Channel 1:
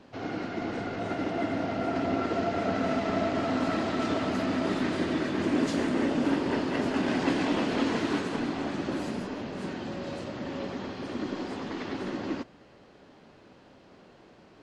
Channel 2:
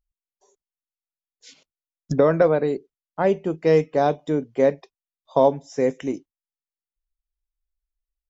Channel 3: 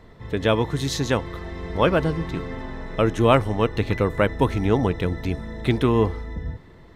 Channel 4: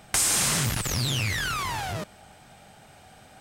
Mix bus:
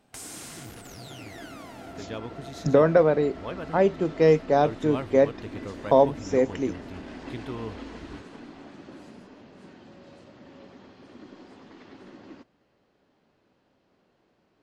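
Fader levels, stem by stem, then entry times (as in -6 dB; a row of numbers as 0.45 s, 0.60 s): -13.5 dB, -1.0 dB, -17.0 dB, -18.5 dB; 0.00 s, 0.55 s, 1.65 s, 0.00 s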